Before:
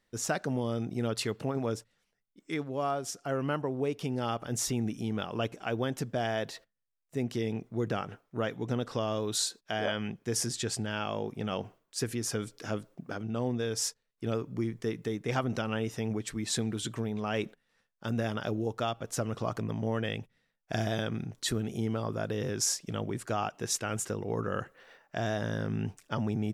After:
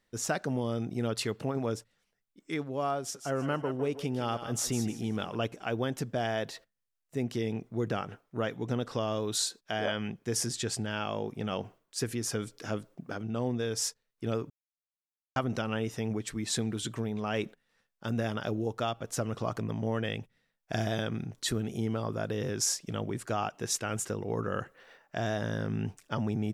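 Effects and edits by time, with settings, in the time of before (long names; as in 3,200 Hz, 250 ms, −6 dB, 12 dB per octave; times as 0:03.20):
0:02.99–0:05.35: feedback echo with a high-pass in the loop 155 ms, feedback 28%, high-pass 570 Hz, level −8.5 dB
0:14.50–0:15.36: silence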